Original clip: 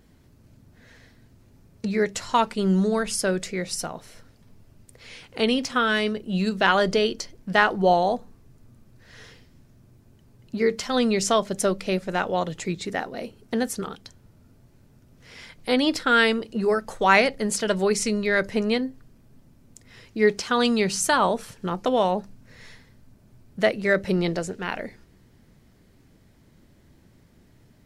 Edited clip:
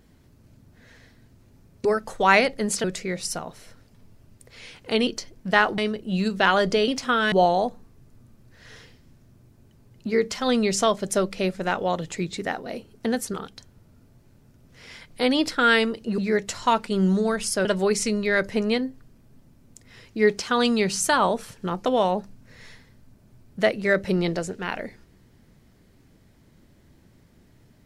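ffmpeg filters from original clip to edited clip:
-filter_complex "[0:a]asplit=9[s0][s1][s2][s3][s4][s5][s6][s7][s8];[s0]atrim=end=1.852[s9];[s1]atrim=start=16.658:end=17.652[s10];[s2]atrim=start=3.318:end=5.552[s11];[s3]atrim=start=7.088:end=7.802[s12];[s4]atrim=start=5.988:end=7.092[s13];[s5]atrim=start=5.548:end=5.992[s14];[s6]atrim=start=7.798:end=16.662[s15];[s7]atrim=start=1.848:end=3.322[s16];[s8]atrim=start=17.648[s17];[s9][s10]acrossfade=d=0.004:c1=hsin:c2=hsin[s18];[s18][s11]acrossfade=d=0.004:c1=hsin:c2=hsin[s19];[s19][s12]acrossfade=d=0.004:c1=hsin:c2=hsin[s20];[s20][s13]acrossfade=d=0.004:c1=hsin:c2=hsin[s21];[s21][s14]acrossfade=d=0.004:c1=hsin:c2=hsin[s22];[s22][s15]acrossfade=d=0.004:c1=hsin:c2=hsin[s23];[s23][s16]acrossfade=d=0.004:c1=hsin:c2=hsin[s24];[s24][s17]acrossfade=d=0.004:c1=hsin:c2=hsin"

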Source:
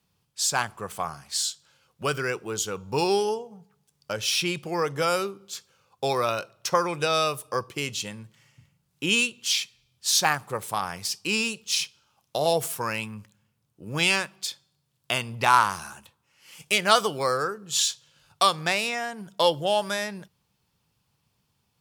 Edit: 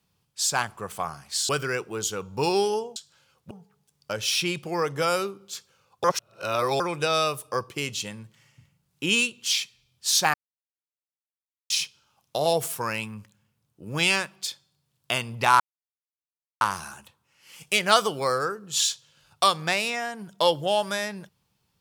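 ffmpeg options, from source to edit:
-filter_complex "[0:a]asplit=9[s0][s1][s2][s3][s4][s5][s6][s7][s8];[s0]atrim=end=1.492[s9];[s1]atrim=start=2.038:end=3.512[s10];[s2]atrim=start=1.488:end=2.042[s11];[s3]atrim=start=3.508:end=6.042[s12];[s4]atrim=start=6.038:end=6.802,asetpts=PTS-STARTPTS,areverse[s13];[s5]atrim=start=6.798:end=10.34,asetpts=PTS-STARTPTS,afade=t=out:st=3.538:d=0.004:c=hsin[s14];[s6]atrim=start=10.34:end=11.7,asetpts=PTS-STARTPTS,volume=0[s15];[s7]atrim=start=11.7:end=15.6,asetpts=PTS-STARTPTS,afade=t=in:d=0.004:c=hsin,afade=t=out:st=3.896:d=0.004:c=hsin,apad=pad_dur=1.01[s16];[s8]atrim=start=15.6,asetpts=PTS-STARTPTS,afade=t=in:d=0.004:c=hsin[s17];[s9][s10]acrossfade=d=0.004:c1=hsin:c2=hsin[s18];[s18][s11]acrossfade=d=0.004:c1=hsin:c2=hsin[s19];[s19][s12]acrossfade=d=0.004:c1=hsin:c2=hsin[s20];[s20][s13]acrossfade=d=0.004:c1=hsin:c2=hsin[s21];[s14][s15][s16][s17]concat=n=4:v=0:a=1[s22];[s21][s22]acrossfade=d=0.004:c1=hsin:c2=hsin"

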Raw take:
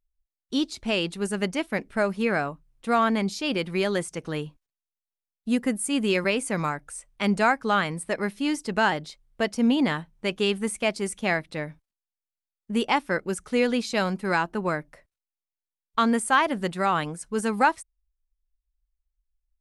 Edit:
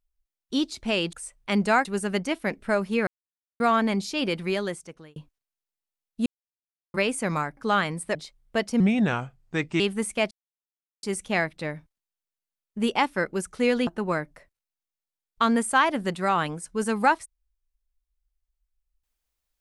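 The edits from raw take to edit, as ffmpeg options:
-filter_complex "[0:a]asplit=14[s0][s1][s2][s3][s4][s5][s6][s7][s8][s9][s10][s11][s12][s13];[s0]atrim=end=1.132[s14];[s1]atrim=start=6.848:end=7.572[s15];[s2]atrim=start=1.128:end=2.35,asetpts=PTS-STARTPTS,afade=t=out:st=1.218:d=0.004:c=hsin[s16];[s3]atrim=start=2.35:end=2.88,asetpts=PTS-STARTPTS,volume=0[s17];[s4]atrim=start=2.88:end=4.44,asetpts=PTS-STARTPTS,afade=t=in:d=0.004:c=hsin,afade=t=out:st=0.79:d=0.77[s18];[s5]atrim=start=4.44:end=5.54,asetpts=PTS-STARTPTS,afade=t=in:d=0.004:c=hsin,afade=t=out:st=1.096:d=0.004:c=hsin[s19];[s6]atrim=start=5.54:end=6.22,asetpts=PTS-STARTPTS,volume=0[s20];[s7]atrim=start=6.22:end=6.852,asetpts=PTS-STARTPTS,afade=t=in:d=0.004:c=hsin[s21];[s8]atrim=start=7.568:end=8.152[s22];[s9]atrim=start=8.998:end=9.654[s23];[s10]atrim=start=9.65:end=10.45,asetpts=PTS-STARTPTS,asetrate=35280,aresample=44100[s24];[s11]atrim=start=10.446:end=10.96,asetpts=PTS-STARTPTS,afade=t=out:st=0.51:d=0.004:c=hsin,apad=pad_dur=0.72[s25];[s12]atrim=start=10.96:end=13.802,asetpts=PTS-STARTPTS,afade=t=in:d=0.004:c=hsin[s26];[s13]atrim=start=14.438[s27];[s14][s15]acrossfade=d=0.004:c1=hsin:c2=hsin[s28];[s16][s17][s18][s19][s20][s21]concat=n=6:v=0:a=1[s29];[s28][s29]acrossfade=d=0.004:c1=hsin:c2=hsin[s30];[s30][s22]acrossfade=d=0.004:c1=hsin:c2=hsin[s31];[s31][s23]acrossfade=d=0.004:c1=hsin:c2=hsin[s32];[s32][s24]acrossfade=d=0.004:c1=hsin:c2=hsin[s33];[s25][s26]concat=n=2:v=0:a=1[s34];[s33][s34]acrossfade=d=0.004:c1=hsin:c2=hsin[s35];[s35][s27]acrossfade=d=0.004:c1=hsin:c2=hsin"

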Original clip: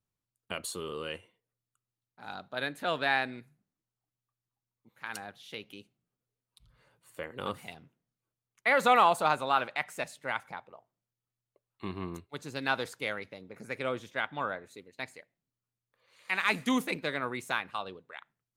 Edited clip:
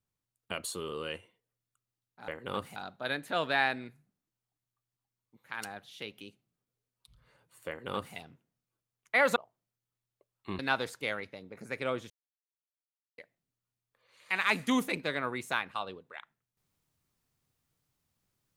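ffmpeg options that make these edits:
-filter_complex "[0:a]asplit=7[s0][s1][s2][s3][s4][s5][s6];[s0]atrim=end=2.282[s7];[s1]atrim=start=7.198:end=7.682[s8];[s2]atrim=start=2.278:end=8.882[s9];[s3]atrim=start=10.708:end=11.942[s10];[s4]atrim=start=12.578:end=14.09,asetpts=PTS-STARTPTS,afade=t=out:st=1.508:d=0.004:c=hsin[s11];[s5]atrim=start=14.09:end=15.17,asetpts=PTS-STARTPTS,volume=0[s12];[s6]atrim=start=15.17,asetpts=PTS-STARTPTS,afade=t=in:d=0.004:c=hsin[s13];[s7][s8]acrossfade=d=0.004:c1=hsin:c2=hsin[s14];[s14][s9]acrossfade=d=0.004:c1=hsin:c2=hsin[s15];[s15][s10]acrossfade=d=0.004:c1=hsin:c2=hsin[s16];[s11][s12][s13]concat=n=3:v=0:a=1[s17];[s16][s17]acrossfade=d=0.004:c1=hsin:c2=hsin"

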